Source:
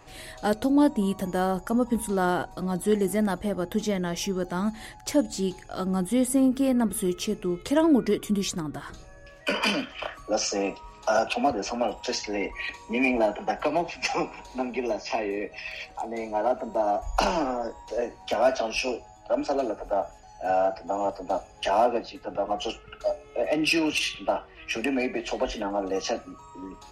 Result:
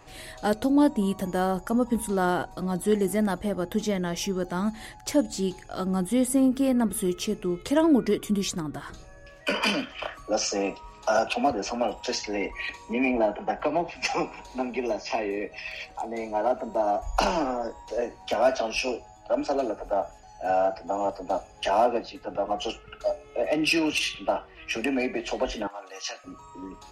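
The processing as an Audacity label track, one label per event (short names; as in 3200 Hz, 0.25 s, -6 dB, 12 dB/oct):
12.930000	13.960000	LPF 2200 Hz 6 dB/oct
25.670000	26.240000	HPF 1300 Hz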